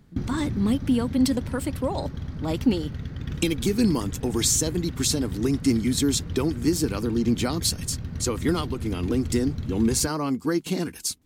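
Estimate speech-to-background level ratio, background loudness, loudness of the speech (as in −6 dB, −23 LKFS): 8.5 dB, −34.0 LKFS, −25.5 LKFS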